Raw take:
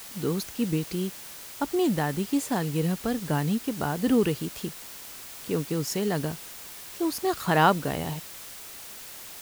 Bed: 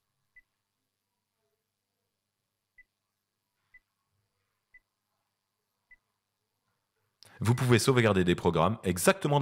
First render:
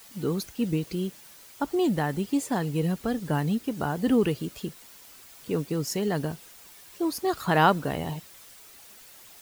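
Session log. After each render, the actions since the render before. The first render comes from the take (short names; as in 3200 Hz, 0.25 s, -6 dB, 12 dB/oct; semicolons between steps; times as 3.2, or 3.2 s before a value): denoiser 9 dB, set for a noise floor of -43 dBFS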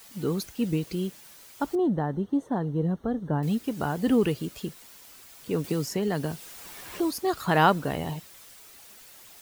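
1.75–3.43 running mean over 18 samples; 5.64–7.11 three-band squash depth 70%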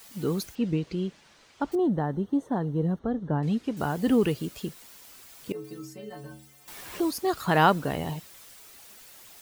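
0.55–1.72 air absorption 120 m; 2.99–3.77 air absorption 82 m; 5.52–6.68 metallic resonator 65 Hz, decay 0.81 s, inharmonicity 0.03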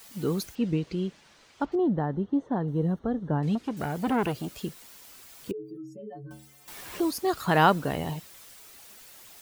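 1.65–2.68 air absorption 150 m; 3.55–4.6 core saturation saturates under 840 Hz; 5.51–6.31 spectral contrast raised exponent 2.3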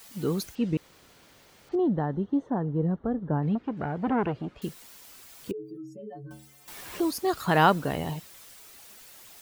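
0.77–1.69 room tone; 2.5–4.62 LPF 1900 Hz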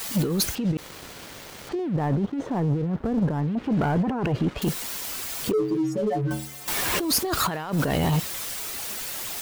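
negative-ratio compressor -34 dBFS, ratio -1; sample leveller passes 3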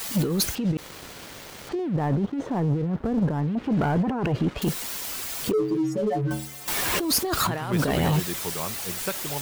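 add bed -8 dB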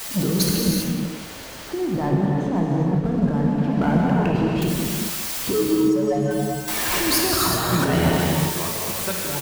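echo 0.185 s -13 dB; non-linear reverb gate 0.42 s flat, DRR -2.5 dB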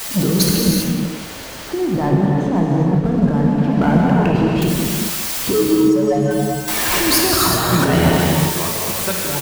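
gain +5 dB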